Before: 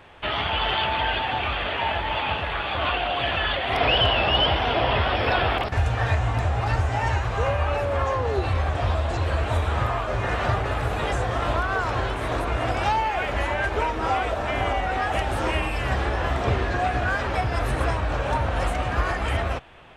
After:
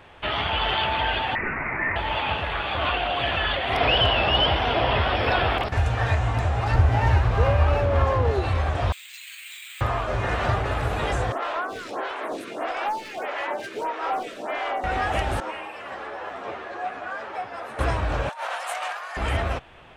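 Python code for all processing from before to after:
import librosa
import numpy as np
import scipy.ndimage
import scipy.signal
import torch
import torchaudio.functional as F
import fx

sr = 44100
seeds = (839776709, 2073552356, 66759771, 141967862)

y = fx.chain(x, sr, fx.highpass(hz=210.0, slope=12),
    fx.freq_invert(carrier_hz=2700), at=(1.35, 1.96))
y = fx.chain(y, sr, fx.lowpass(hz=5200.0, slope=12),
    fx.low_shelf(hz=340.0, db=6.5),
    fx.running_max(window=3), at=(6.74, 8.31))
y = fx.chain(y, sr, fx.ellip_bandpass(low_hz=2200.0, high_hz=6400.0, order=3, stop_db=70),
    fx.resample_bad(factor=4, down='filtered', up='hold'), at=(8.92, 9.81))
y = fx.chain(y, sr, fx.highpass(hz=240.0, slope=24),
    fx.clip_hard(threshold_db=-21.0),
    fx.stagger_phaser(hz=1.6), at=(11.32, 14.84))
y = fx.chain(y, sr, fx.bessel_highpass(hz=570.0, order=2),
    fx.high_shelf(hz=2300.0, db=-11.5),
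    fx.ensemble(), at=(15.4, 17.79))
y = fx.chain(y, sr, fx.highpass(hz=680.0, slope=24),
    fx.high_shelf(hz=7300.0, db=7.0),
    fx.over_compress(threshold_db=-31.0, ratio=-0.5), at=(18.29, 19.17))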